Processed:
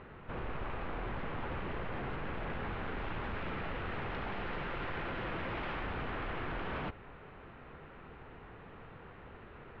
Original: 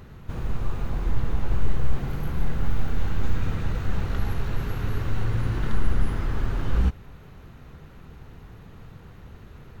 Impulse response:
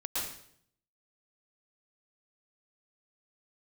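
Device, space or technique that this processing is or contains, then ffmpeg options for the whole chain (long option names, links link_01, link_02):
synthesiser wavefolder: -filter_complex "[0:a]asettb=1/sr,asplit=3[link_01][link_02][link_03];[link_01]atrim=end=4.314[link_04];[link_02]atrim=start=4.31:end=5.84,asetpts=PTS-STARTPTS,afade=type=in:duration=0.004:curve=qsin,afade=type=out:start_time=1.526:duration=0.004:curve=qsin,aecho=1:1:5.8:0.61,atrim=end_sample=67473[link_05];[link_03]atrim=start=5.836[link_06];[link_04][link_05]acrossfade=duration=0.004:curve1=hsin:curve2=qsin[link_07];[link_07][link_06]acrossfade=duration=0.004:curve1=qsin:curve2=hsin,bass=frequency=250:gain=-13,treble=frequency=4000:gain=-6,aeval=exprs='0.0188*(abs(mod(val(0)/0.0188+3,4)-2)-1)':channel_layout=same,lowpass=frequency=3000:width=0.5412,lowpass=frequency=3000:width=1.3066,volume=1.5dB"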